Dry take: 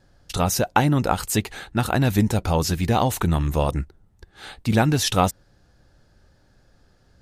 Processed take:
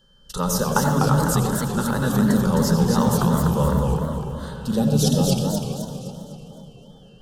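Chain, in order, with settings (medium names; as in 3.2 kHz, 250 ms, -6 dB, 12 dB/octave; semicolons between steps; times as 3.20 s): time-frequency box 4.63–6.90 s, 860–2400 Hz -19 dB; whistle 3.1 kHz -52 dBFS; static phaser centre 470 Hz, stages 8; two-band feedback delay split 1.3 kHz, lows 436 ms, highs 219 ms, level -13.5 dB; on a send at -4 dB: reverberation RT60 0.60 s, pre-delay 77 ms; on the sum: modulated delay 255 ms, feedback 47%, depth 219 cents, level -3.5 dB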